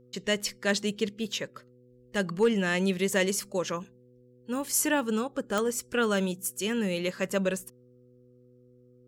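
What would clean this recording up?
clip repair -15 dBFS; de-click; de-hum 124 Hz, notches 4

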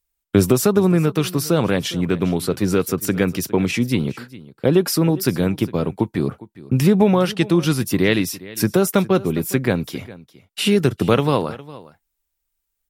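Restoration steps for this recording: inverse comb 0.408 s -19 dB

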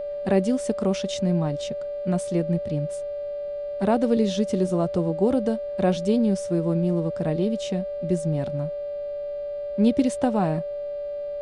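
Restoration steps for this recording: de-hum 397.5 Hz, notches 12; notch 580 Hz, Q 30; expander -23 dBFS, range -21 dB

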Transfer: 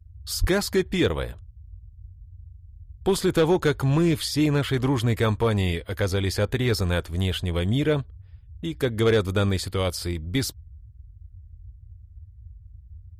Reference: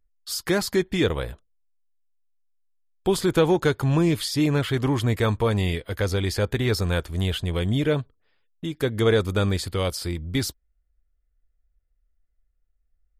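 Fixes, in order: clip repair -13.5 dBFS; 0.4–0.52 HPF 140 Hz 24 dB/oct; noise print and reduce 21 dB

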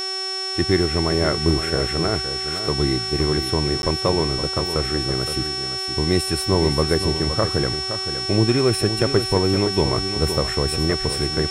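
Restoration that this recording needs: de-hum 380.2 Hz, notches 28; notch 5400 Hz, Q 30; interpolate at 3.82, 11 ms; inverse comb 0.517 s -9.5 dB

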